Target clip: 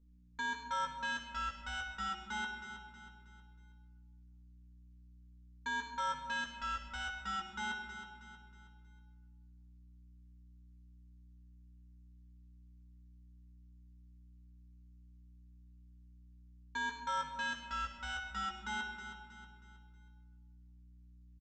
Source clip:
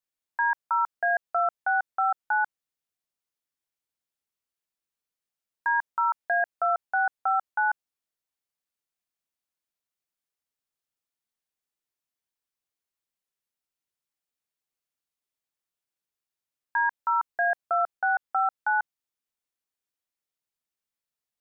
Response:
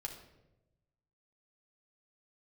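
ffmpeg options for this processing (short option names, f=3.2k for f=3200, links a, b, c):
-filter_complex "[0:a]aeval=exprs='val(0)+0.001*(sin(2*PI*60*n/s)+sin(2*PI*2*60*n/s)/2+sin(2*PI*3*60*n/s)/3+sin(2*PI*4*60*n/s)/4+sin(2*PI*5*60*n/s)/5)':c=same,aresample=16000,asoftclip=type=tanh:threshold=-31.5dB,aresample=44100,asuperstop=centerf=710:order=4:qfactor=3.4,aecho=1:1:318|636|954|1272:0.299|0.125|0.0527|0.0221[a];[1:a]atrim=start_sample=2205,asetrate=24696,aresample=44100[b];[a][b]afir=irnorm=-1:irlink=0,volume=-5.5dB"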